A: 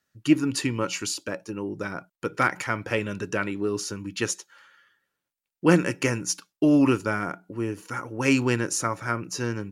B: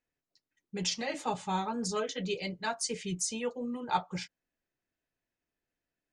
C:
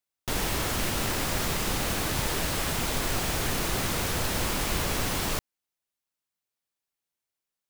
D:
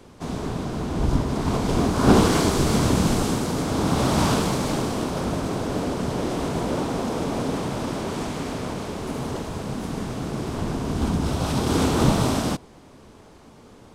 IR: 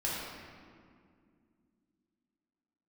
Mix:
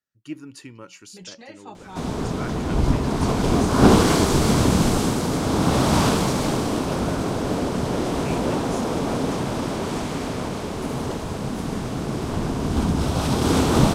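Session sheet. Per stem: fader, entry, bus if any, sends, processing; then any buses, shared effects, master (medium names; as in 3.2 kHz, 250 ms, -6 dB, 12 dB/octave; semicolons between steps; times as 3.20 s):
-14.5 dB, 0.00 s, no send, none
-8.0 dB, 0.40 s, no send, none
mute
+2.0 dB, 1.75 s, no send, none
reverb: none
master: none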